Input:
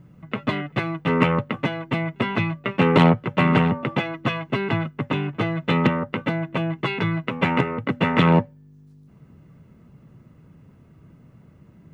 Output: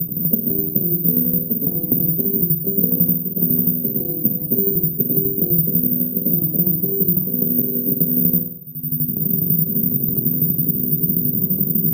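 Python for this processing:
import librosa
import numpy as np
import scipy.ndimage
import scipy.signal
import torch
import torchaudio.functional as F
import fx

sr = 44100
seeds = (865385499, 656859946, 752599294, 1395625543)

p1 = fx.freq_snap(x, sr, grid_st=2)
p2 = fx.recorder_agc(p1, sr, target_db=-8.0, rise_db_per_s=25.0, max_gain_db=30)
p3 = scipy.signal.sosfilt(scipy.signal.ellip(3, 1.0, 60, [160.0, 400.0], 'bandpass', fs=sr, output='sos'), p2)
p4 = p3 + 0.65 * np.pad(p3, (int(1.5 * sr / 1000.0), 0))[:len(p3)]
p5 = fx.tremolo_shape(p4, sr, shape='saw_down', hz=12.0, depth_pct=80)
p6 = p5 + fx.room_flutter(p5, sr, wall_m=8.3, rt60_s=0.51, dry=0)
p7 = (np.kron(scipy.signal.resample_poly(p6, 1, 3), np.eye(3)[0]) * 3)[:len(p6)]
p8 = fx.band_squash(p7, sr, depth_pct=100)
y = p8 * 10.0 ** (3.5 / 20.0)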